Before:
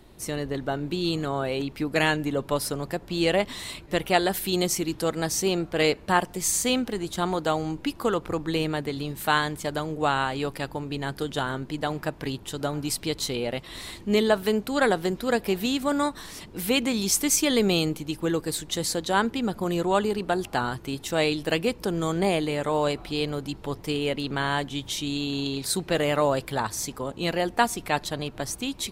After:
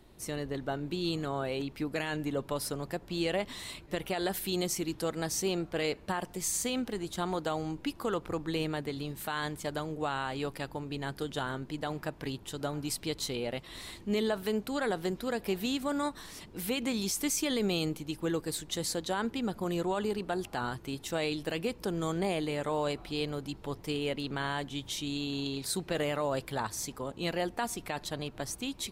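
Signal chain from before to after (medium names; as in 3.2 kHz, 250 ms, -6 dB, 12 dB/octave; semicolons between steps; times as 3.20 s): peak limiter -15.5 dBFS, peak gain reduction 10.5 dB; trim -6 dB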